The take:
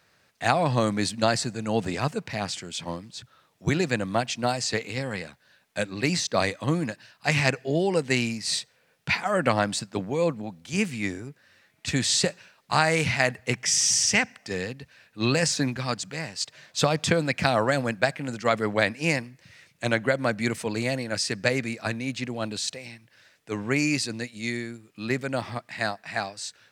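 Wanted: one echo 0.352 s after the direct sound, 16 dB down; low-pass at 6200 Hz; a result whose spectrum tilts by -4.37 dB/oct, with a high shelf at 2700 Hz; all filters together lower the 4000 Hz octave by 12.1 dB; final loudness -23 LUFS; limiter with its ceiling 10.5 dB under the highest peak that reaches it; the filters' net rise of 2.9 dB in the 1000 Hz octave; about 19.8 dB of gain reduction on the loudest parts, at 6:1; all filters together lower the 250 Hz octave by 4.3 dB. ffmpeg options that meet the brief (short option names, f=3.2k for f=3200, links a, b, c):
-af "lowpass=6.2k,equalizer=f=250:t=o:g=-6,equalizer=f=1k:t=o:g=6,highshelf=f=2.7k:g=-7.5,equalizer=f=4k:t=o:g=-8,acompressor=threshold=-38dB:ratio=6,alimiter=level_in=7.5dB:limit=-24dB:level=0:latency=1,volume=-7.5dB,aecho=1:1:352:0.158,volume=21.5dB"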